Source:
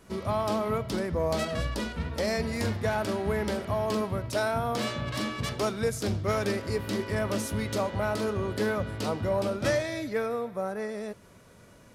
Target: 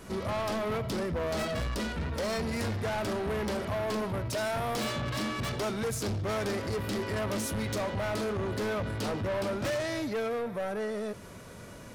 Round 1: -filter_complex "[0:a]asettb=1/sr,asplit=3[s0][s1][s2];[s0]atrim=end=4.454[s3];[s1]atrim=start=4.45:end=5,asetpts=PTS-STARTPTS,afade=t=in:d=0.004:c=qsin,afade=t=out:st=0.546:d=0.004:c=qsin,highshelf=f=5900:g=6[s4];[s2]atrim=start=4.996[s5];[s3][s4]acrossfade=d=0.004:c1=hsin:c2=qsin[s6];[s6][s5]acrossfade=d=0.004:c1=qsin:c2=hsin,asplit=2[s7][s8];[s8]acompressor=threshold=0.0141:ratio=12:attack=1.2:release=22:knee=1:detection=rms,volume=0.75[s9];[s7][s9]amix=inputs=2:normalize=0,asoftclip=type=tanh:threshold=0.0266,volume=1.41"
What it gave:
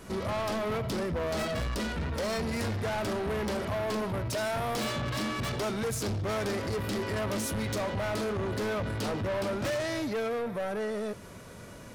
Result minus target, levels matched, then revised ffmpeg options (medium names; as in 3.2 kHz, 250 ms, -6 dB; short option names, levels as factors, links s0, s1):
compression: peak gain reduction -9.5 dB
-filter_complex "[0:a]asettb=1/sr,asplit=3[s0][s1][s2];[s0]atrim=end=4.454[s3];[s1]atrim=start=4.45:end=5,asetpts=PTS-STARTPTS,afade=t=in:d=0.004:c=qsin,afade=t=out:st=0.546:d=0.004:c=qsin,highshelf=f=5900:g=6[s4];[s2]atrim=start=4.996[s5];[s3][s4]acrossfade=d=0.004:c1=hsin:c2=qsin[s6];[s6][s5]acrossfade=d=0.004:c1=qsin:c2=hsin,asplit=2[s7][s8];[s8]acompressor=threshold=0.00422:ratio=12:attack=1.2:release=22:knee=1:detection=rms,volume=0.75[s9];[s7][s9]amix=inputs=2:normalize=0,asoftclip=type=tanh:threshold=0.0266,volume=1.41"